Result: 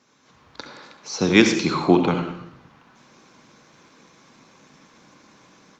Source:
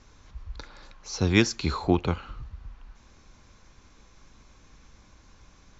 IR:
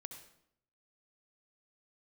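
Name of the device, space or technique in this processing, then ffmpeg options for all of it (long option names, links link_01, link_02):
far-field microphone of a smart speaker: -filter_complex "[1:a]atrim=start_sample=2205[link_01];[0:a][link_01]afir=irnorm=-1:irlink=0,highpass=frequency=160:width=0.5412,highpass=frequency=160:width=1.3066,dynaudnorm=framelen=230:gausssize=3:maxgain=11dB,volume=2.5dB" -ar 48000 -c:a libopus -b:a 48k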